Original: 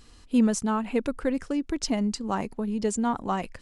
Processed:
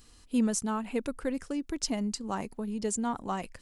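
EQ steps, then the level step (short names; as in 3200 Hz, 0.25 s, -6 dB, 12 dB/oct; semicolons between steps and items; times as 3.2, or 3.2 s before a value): high shelf 7300 Hz +11.5 dB; -5.5 dB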